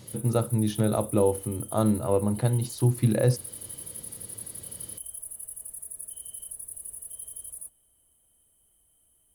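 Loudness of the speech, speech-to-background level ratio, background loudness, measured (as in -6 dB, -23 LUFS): -26.0 LUFS, 12.0 dB, -38.0 LUFS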